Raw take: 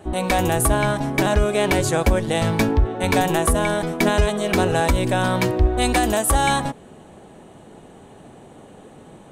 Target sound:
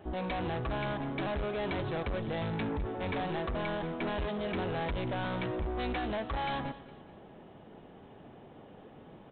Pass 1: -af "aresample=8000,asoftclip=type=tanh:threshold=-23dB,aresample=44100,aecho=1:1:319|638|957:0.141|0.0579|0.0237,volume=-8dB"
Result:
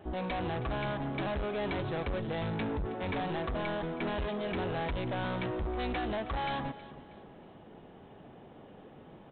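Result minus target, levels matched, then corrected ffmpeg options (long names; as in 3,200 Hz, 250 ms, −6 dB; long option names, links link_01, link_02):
echo 113 ms late
-af "aresample=8000,asoftclip=type=tanh:threshold=-23dB,aresample=44100,aecho=1:1:206|412|618:0.141|0.0579|0.0237,volume=-8dB"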